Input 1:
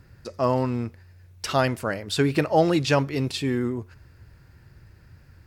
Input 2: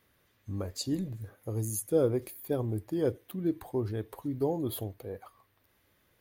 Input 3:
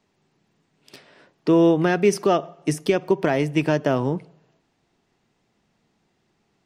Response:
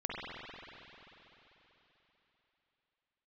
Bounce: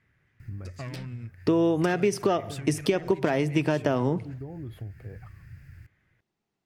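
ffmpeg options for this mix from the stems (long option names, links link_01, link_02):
-filter_complex "[0:a]asoftclip=type=tanh:threshold=-20dB,adelay=400,volume=0.5dB[link_01];[1:a]lowpass=1200,crystalizer=i=7.5:c=0,volume=1.5dB[link_02];[2:a]agate=range=-16dB:threshold=-48dB:ratio=16:detection=peak,volume=1.5dB[link_03];[link_01][link_02]amix=inputs=2:normalize=0,equalizer=frequency=125:width_type=o:width=1:gain=7,equalizer=frequency=250:width_type=o:width=1:gain=-4,equalizer=frequency=500:width_type=o:width=1:gain=-9,equalizer=frequency=1000:width_type=o:width=1:gain=-11,equalizer=frequency=2000:width_type=o:width=1:gain=9,equalizer=frequency=4000:width_type=o:width=1:gain=-9,acompressor=threshold=-34dB:ratio=12,volume=0dB[link_04];[link_03][link_04]amix=inputs=2:normalize=0,acompressor=threshold=-20dB:ratio=5"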